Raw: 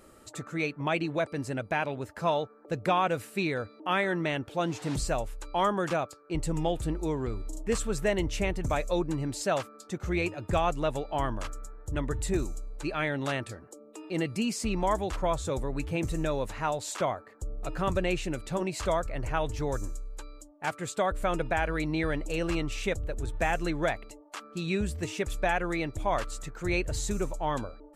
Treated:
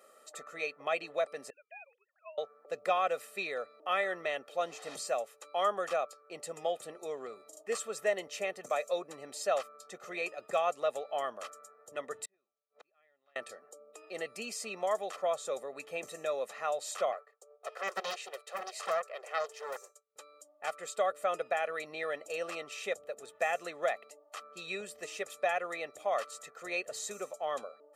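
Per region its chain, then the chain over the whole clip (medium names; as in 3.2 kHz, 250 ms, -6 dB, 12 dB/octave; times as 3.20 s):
1.50–2.38 s: formants replaced by sine waves + differentiator + upward expansion, over -55 dBFS
12.25–13.36 s: distance through air 300 m + inverted gate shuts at -33 dBFS, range -38 dB + tape noise reduction on one side only encoder only
17.12–20.16 s: elliptic high-pass 390 Hz + expander -48 dBFS + loudspeaker Doppler distortion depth 0.89 ms
whole clip: high-pass 310 Hz 24 dB/octave; comb 1.6 ms, depth 80%; trim -6 dB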